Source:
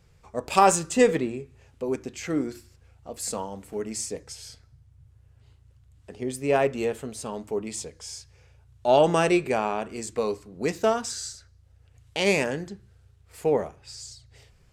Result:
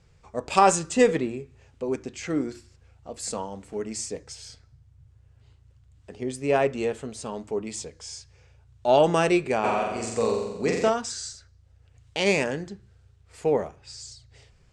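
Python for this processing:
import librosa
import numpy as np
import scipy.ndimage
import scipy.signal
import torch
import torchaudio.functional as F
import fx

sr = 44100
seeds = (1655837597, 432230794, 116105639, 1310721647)

y = scipy.signal.sosfilt(scipy.signal.butter(4, 8700.0, 'lowpass', fs=sr, output='sos'), x)
y = fx.room_flutter(y, sr, wall_m=7.6, rt60_s=1.0, at=(9.63, 10.88), fade=0.02)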